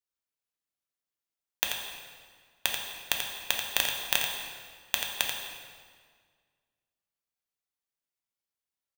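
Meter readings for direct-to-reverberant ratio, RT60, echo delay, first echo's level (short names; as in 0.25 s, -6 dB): -0.5 dB, 1.8 s, 86 ms, -7.0 dB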